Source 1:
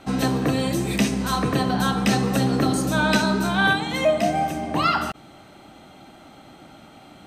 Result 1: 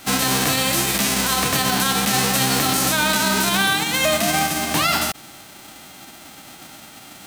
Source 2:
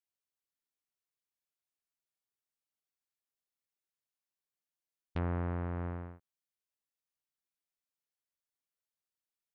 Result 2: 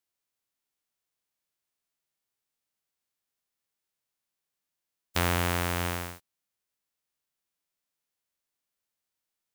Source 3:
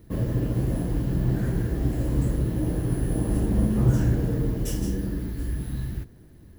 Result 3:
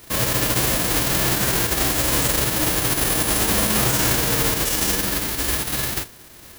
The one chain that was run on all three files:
spectral envelope flattened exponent 0.3
brickwall limiter −14 dBFS
normalise the peak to −9 dBFS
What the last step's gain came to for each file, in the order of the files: +5.0, +6.5, +5.0 decibels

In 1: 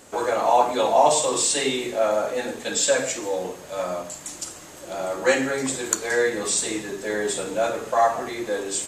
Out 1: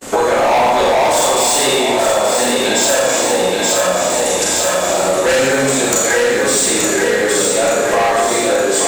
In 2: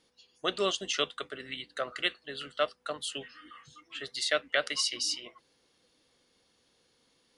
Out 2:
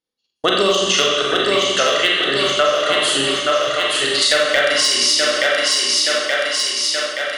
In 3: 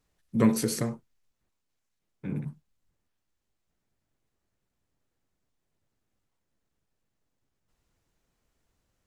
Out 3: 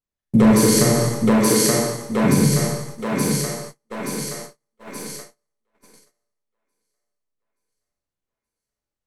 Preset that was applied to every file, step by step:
four-comb reverb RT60 0.93 s, combs from 29 ms, DRR −3 dB
hard clipping −17 dBFS
on a send: feedback echo with a high-pass in the loop 875 ms, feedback 61%, high-pass 250 Hz, level −5 dB
on the sum: noise gate −51 dBFS, range −36 dB
downward compressor 6 to 1, threshold −29 dBFS
normalise the peak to −3 dBFS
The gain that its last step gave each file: +17.0, +16.5, +17.0 decibels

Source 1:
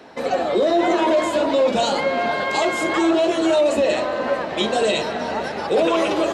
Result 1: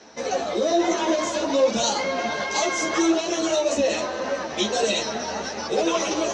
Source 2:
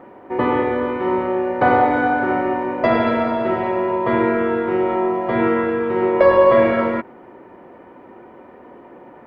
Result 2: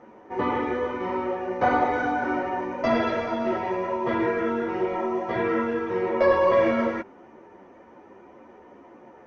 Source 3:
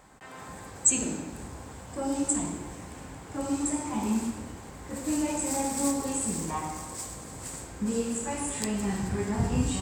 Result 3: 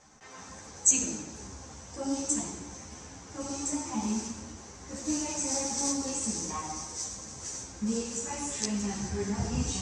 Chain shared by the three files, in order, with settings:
low-pass with resonance 6,000 Hz, resonance Q 9.5
string-ensemble chorus
normalise the peak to −9 dBFS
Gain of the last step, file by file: −1.5, −3.5, −1.5 decibels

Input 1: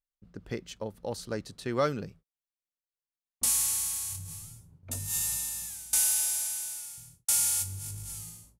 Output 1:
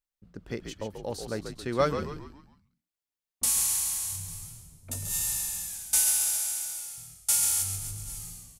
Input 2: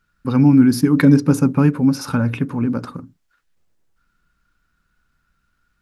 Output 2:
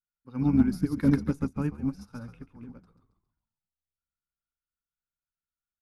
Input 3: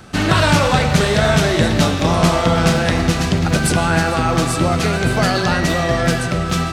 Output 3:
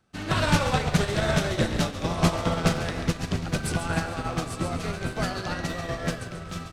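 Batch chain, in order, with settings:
hard clipping −3.5 dBFS
on a send: echo with shifted repeats 137 ms, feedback 43%, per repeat −68 Hz, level −7 dB
on the sum: expander for the loud parts 2.5 to 1, over −25 dBFS
loudness normalisation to −27 LKFS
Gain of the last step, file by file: +3.5, −8.0, −6.0 decibels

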